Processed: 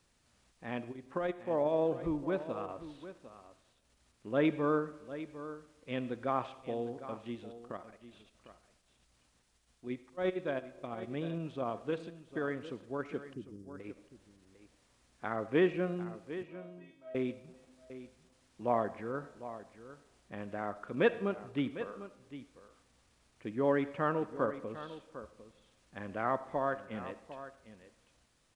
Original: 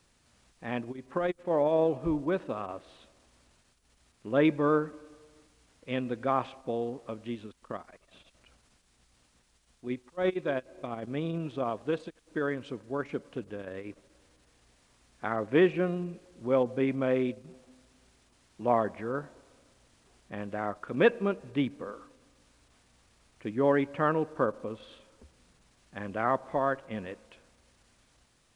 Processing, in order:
0:13.33–0:13.80: Chebyshev band-stop filter 360–4,900 Hz, order 4
0:16.43–0:17.15: tuned comb filter 320 Hz, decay 0.56 s, mix 100%
single-tap delay 752 ms −13.5 dB
on a send at −15 dB: convolution reverb RT60 0.60 s, pre-delay 25 ms
on the sum: level −5 dB

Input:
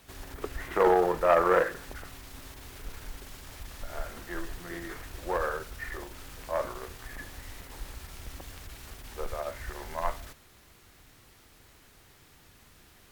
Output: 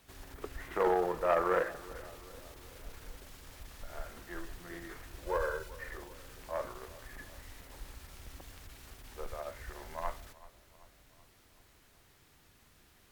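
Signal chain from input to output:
0:05.26–0:05.69: comb filter 2 ms, depth 77%
feedback echo with a low-pass in the loop 382 ms, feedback 59%, level −19 dB
level −6.5 dB

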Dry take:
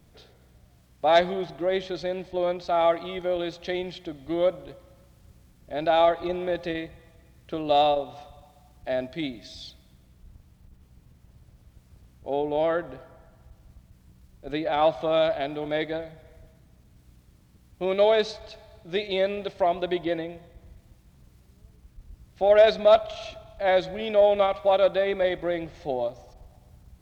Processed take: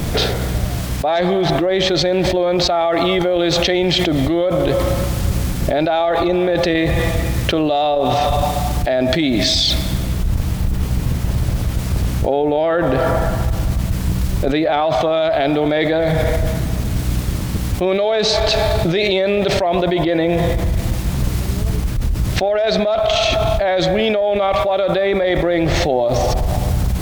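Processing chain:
envelope flattener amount 100%
level −3.5 dB

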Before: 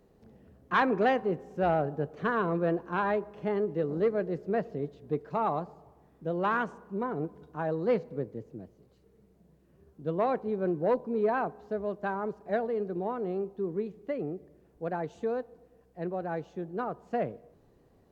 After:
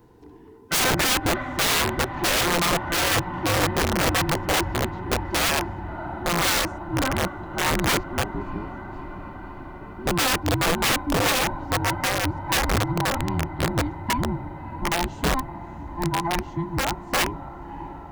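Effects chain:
frequency inversion band by band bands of 500 Hz
0:13.15–0:13.63: ring modulation 40 Hz
on a send: feedback delay with all-pass diffusion 629 ms, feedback 75%, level −14.5 dB
on the sum: wrap-around overflow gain 25 dB
level +9 dB

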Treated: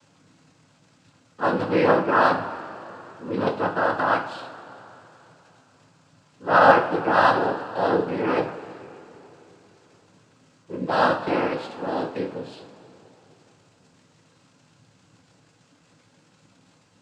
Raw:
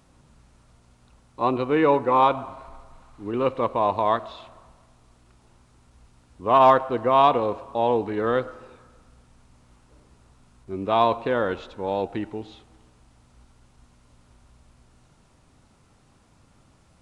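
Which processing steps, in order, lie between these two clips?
surface crackle 130 per second −42 dBFS
cochlear-implant simulation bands 8
coupled-rooms reverb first 0.36 s, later 3.5 s, from −18 dB, DRR 2.5 dB
level −1 dB

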